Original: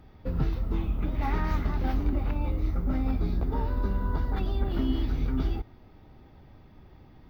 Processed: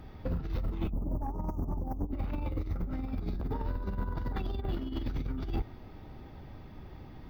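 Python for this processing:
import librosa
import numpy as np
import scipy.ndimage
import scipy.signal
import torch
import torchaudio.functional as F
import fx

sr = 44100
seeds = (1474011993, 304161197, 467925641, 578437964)

y = fx.cheby2_bandstop(x, sr, low_hz=1700.0, high_hz=3900.0, order=4, stop_db=50, at=(0.89, 2.11), fade=0.02)
y = fx.over_compress(y, sr, threshold_db=-30.0, ratio=-0.5)
y = 10.0 ** (-24.0 / 20.0) * np.tanh(y / 10.0 ** (-24.0 / 20.0))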